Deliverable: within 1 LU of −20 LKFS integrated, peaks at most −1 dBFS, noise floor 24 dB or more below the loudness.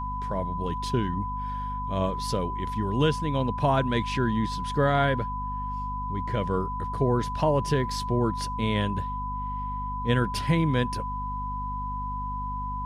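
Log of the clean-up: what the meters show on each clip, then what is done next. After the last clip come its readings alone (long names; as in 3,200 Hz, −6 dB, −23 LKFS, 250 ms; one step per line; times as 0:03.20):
mains hum 50 Hz; hum harmonics up to 250 Hz; level of the hum −32 dBFS; interfering tone 1,000 Hz; level of the tone −31 dBFS; integrated loudness −28.0 LKFS; sample peak −11.5 dBFS; target loudness −20.0 LKFS
→ mains-hum notches 50/100/150/200/250 Hz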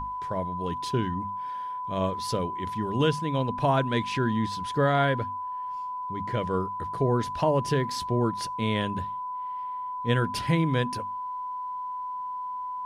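mains hum none found; interfering tone 1,000 Hz; level of the tone −31 dBFS
→ notch filter 1,000 Hz, Q 30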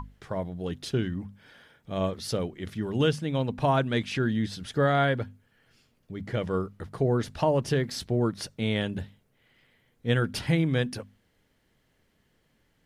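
interfering tone none found; integrated loudness −28.5 LKFS; sample peak −11.0 dBFS; target loudness −20.0 LKFS
→ level +8.5 dB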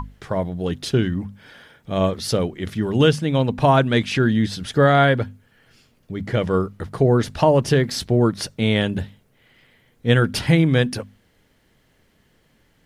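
integrated loudness −20.0 LKFS; sample peak −2.5 dBFS; background noise floor −61 dBFS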